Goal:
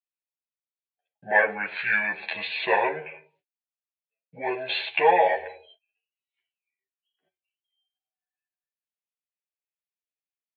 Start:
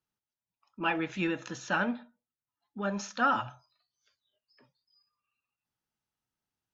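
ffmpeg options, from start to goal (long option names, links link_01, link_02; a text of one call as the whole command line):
ffmpeg -i in.wav -filter_complex "[0:a]agate=range=-29dB:threshold=-58dB:ratio=16:detection=peak,aecho=1:1:6.9:0.91,acrossover=split=680[link_01][link_02];[link_01]acompressor=threshold=-40dB:ratio=6[link_03];[link_02]aexciter=amount=2.5:drive=8.6:freq=2700[link_04];[link_03][link_04]amix=inputs=2:normalize=0,highpass=380,equalizer=frequency=430:width_type=q:width=4:gain=-5,equalizer=frequency=700:width_type=q:width=4:gain=10,equalizer=frequency=1100:width_type=q:width=4:gain=10,equalizer=frequency=1800:width_type=q:width=4:gain=-9,equalizer=frequency=2500:width_type=q:width=4:gain=4,equalizer=frequency=4000:width_type=q:width=4:gain=9,lowpass=frequency=4900:width=0.5412,lowpass=frequency=4900:width=1.3066,asetrate=28136,aresample=44100,volume=1.5dB" out.wav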